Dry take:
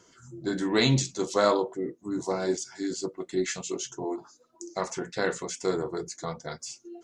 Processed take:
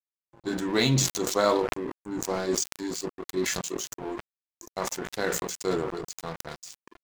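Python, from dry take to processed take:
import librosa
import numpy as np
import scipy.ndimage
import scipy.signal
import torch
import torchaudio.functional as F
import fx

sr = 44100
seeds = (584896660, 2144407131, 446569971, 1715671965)

y = np.sign(x) * np.maximum(np.abs(x) - 10.0 ** (-38.5 / 20.0), 0.0)
y = fx.sustainer(y, sr, db_per_s=35.0)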